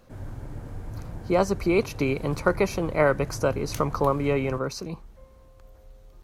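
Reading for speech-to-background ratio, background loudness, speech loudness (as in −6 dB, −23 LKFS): 13.5 dB, −39.0 LKFS, −25.5 LKFS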